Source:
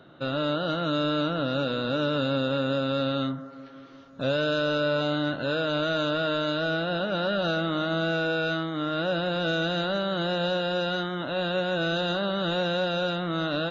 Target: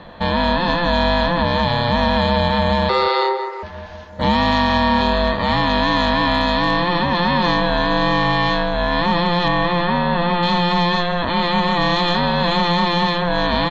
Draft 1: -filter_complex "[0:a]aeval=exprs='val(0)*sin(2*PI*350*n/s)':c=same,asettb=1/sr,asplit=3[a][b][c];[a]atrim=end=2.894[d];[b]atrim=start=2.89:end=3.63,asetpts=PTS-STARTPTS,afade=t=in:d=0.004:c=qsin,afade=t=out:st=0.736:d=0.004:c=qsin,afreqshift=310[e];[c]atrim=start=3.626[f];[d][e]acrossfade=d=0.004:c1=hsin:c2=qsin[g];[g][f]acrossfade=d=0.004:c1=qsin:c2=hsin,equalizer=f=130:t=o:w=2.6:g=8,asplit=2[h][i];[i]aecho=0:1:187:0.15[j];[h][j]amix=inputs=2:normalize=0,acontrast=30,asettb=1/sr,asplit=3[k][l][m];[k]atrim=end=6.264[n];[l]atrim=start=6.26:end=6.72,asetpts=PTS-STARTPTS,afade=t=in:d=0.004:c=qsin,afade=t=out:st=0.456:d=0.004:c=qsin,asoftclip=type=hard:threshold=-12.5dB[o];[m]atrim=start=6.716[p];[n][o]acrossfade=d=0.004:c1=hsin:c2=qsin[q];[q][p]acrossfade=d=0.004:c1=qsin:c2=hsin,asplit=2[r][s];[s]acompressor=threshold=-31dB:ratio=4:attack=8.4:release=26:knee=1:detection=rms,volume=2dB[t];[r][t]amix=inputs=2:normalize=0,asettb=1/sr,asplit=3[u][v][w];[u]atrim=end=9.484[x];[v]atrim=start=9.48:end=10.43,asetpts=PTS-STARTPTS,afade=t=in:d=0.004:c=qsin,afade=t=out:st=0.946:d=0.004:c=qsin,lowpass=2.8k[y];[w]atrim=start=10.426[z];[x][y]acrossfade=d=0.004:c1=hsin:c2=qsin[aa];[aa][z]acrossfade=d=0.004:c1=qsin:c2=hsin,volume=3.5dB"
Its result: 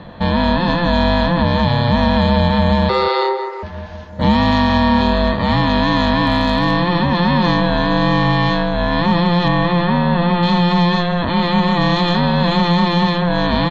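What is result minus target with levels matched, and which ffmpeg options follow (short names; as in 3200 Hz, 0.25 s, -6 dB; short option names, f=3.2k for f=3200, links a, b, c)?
125 Hz band +4.0 dB
-filter_complex "[0:a]aeval=exprs='val(0)*sin(2*PI*350*n/s)':c=same,asettb=1/sr,asplit=3[a][b][c];[a]atrim=end=2.894[d];[b]atrim=start=2.89:end=3.63,asetpts=PTS-STARTPTS,afade=t=in:d=0.004:c=qsin,afade=t=out:st=0.736:d=0.004:c=qsin,afreqshift=310[e];[c]atrim=start=3.626[f];[d][e]acrossfade=d=0.004:c1=hsin:c2=qsin[g];[g][f]acrossfade=d=0.004:c1=qsin:c2=hsin,asplit=2[h][i];[i]aecho=0:1:187:0.15[j];[h][j]amix=inputs=2:normalize=0,acontrast=30,asettb=1/sr,asplit=3[k][l][m];[k]atrim=end=6.264[n];[l]atrim=start=6.26:end=6.72,asetpts=PTS-STARTPTS,afade=t=in:d=0.004:c=qsin,afade=t=out:st=0.456:d=0.004:c=qsin,asoftclip=type=hard:threshold=-12.5dB[o];[m]atrim=start=6.716[p];[n][o]acrossfade=d=0.004:c1=hsin:c2=qsin[q];[q][p]acrossfade=d=0.004:c1=qsin:c2=hsin,asplit=2[r][s];[s]acompressor=threshold=-31dB:ratio=4:attack=8.4:release=26:knee=1:detection=rms,volume=2dB[t];[r][t]amix=inputs=2:normalize=0,asettb=1/sr,asplit=3[u][v][w];[u]atrim=end=9.484[x];[v]atrim=start=9.48:end=10.43,asetpts=PTS-STARTPTS,afade=t=in:d=0.004:c=qsin,afade=t=out:st=0.946:d=0.004:c=qsin,lowpass=2.8k[y];[w]atrim=start=10.426[z];[x][y]acrossfade=d=0.004:c1=hsin:c2=qsin[aa];[aa][z]acrossfade=d=0.004:c1=qsin:c2=hsin,volume=3.5dB"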